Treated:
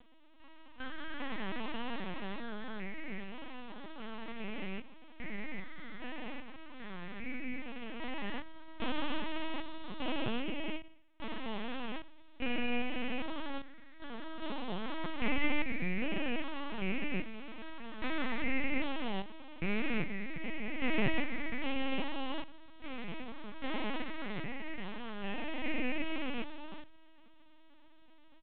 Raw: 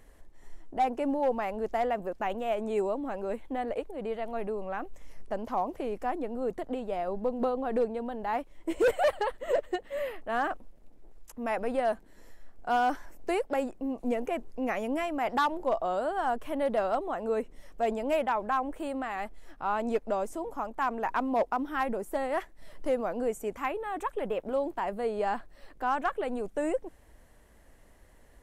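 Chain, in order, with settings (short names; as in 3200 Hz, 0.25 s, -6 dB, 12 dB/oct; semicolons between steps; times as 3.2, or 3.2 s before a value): stepped spectrum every 0.4 s; steep high-pass 990 Hz 48 dB/oct; full-wave rectifier; air absorption 380 m; feedback echo 66 ms, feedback 53%, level -18.5 dB; LPC vocoder at 8 kHz pitch kept; ending taper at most 190 dB/s; gain +14.5 dB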